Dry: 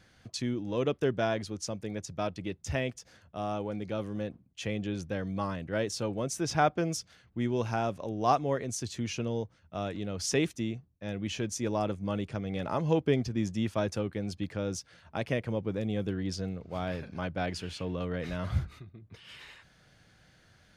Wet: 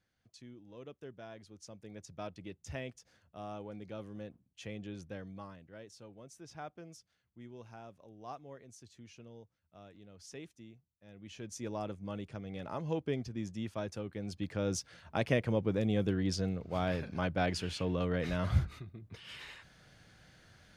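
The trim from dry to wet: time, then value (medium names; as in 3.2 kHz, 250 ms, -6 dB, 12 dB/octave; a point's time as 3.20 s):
1.25 s -20 dB
2.12 s -10 dB
5.15 s -10 dB
5.77 s -20 dB
11.06 s -20 dB
11.59 s -8.5 dB
14.02 s -8.5 dB
14.76 s +1 dB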